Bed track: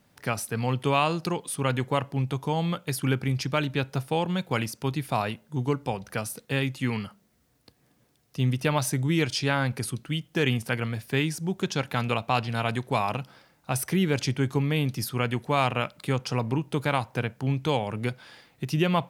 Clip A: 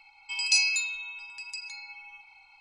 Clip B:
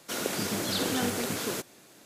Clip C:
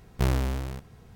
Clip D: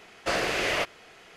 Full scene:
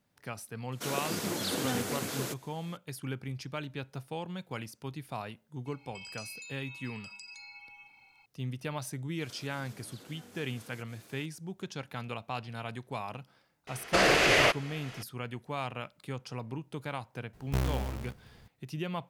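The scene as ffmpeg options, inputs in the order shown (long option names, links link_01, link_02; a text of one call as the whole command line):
ffmpeg -i bed.wav -i cue0.wav -i cue1.wav -i cue2.wav -i cue3.wav -filter_complex "[2:a]asplit=2[link_01][link_02];[0:a]volume=-12dB[link_03];[link_01]highpass=49[link_04];[1:a]acompressor=threshold=-39dB:ratio=6:attack=3.2:release=140:knee=1:detection=peak[link_05];[link_02]acompressor=threshold=-50dB:ratio=6:attack=3.2:release=140:knee=1:detection=peak[link_06];[4:a]alimiter=level_in=16.5dB:limit=-1dB:release=50:level=0:latency=1[link_07];[3:a]acrusher=bits=4:mode=log:mix=0:aa=0.000001[link_08];[link_04]atrim=end=2.05,asetpts=PTS-STARTPTS,volume=-4dB,afade=type=in:duration=0.004:curve=hsin,afade=type=out:start_time=2.046:duration=0.004:curve=hsin,adelay=720[link_09];[link_05]atrim=end=2.6,asetpts=PTS-STARTPTS,volume=-5dB,afade=type=in:duration=0.004:curve=hsin,afade=type=out:start_time=2.596:duration=0.004:curve=hsin,adelay=5660[link_10];[link_06]atrim=end=2.05,asetpts=PTS-STARTPTS,volume=-2.5dB,afade=type=in:duration=0.004:curve=hsin,afade=type=out:start_time=2.046:duration=0.004:curve=hsin,adelay=9210[link_11];[link_07]atrim=end=1.36,asetpts=PTS-STARTPTS,volume=-12dB,afade=type=in:duration=0.004:curve=hsin,afade=type=out:start_time=1.356:duration=0.004:curve=hsin,adelay=13670[link_12];[link_08]atrim=end=1.15,asetpts=PTS-STARTPTS,volume=-6dB,afade=type=in:duration=0.004:curve=hsin,afade=type=out:start_time=1.146:duration=0.004:curve=hsin,adelay=17330[link_13];[link_03][link_09][link_10][link_11][link_12][link_13]amix=inputs=6:normalize=0" out.wav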